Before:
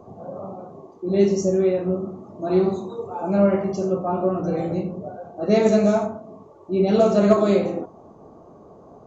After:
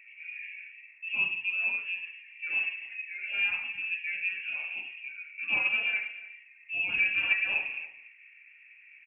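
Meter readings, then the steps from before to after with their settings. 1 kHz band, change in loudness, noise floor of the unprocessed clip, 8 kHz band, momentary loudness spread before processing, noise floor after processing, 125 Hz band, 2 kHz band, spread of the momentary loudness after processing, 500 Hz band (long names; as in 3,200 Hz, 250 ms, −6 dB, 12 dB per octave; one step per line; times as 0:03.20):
−21.5 dB, −8.5 dB, −48 dBFS, can't be measured, 18 LU, −56 dBFS, below −30 dB, +13.0 dB, 16 LU, −37.5 dB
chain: high-pass filter 460 Hz 12 dB per octave
dynamic equaliser 1,000 Hz, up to −6 dB, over −36 dBFS, Q 0.98
on a send: single-tap delay 287 ms −18 dB
on the sum: voice inversion scrambler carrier 3,000 Hz
level −5 dB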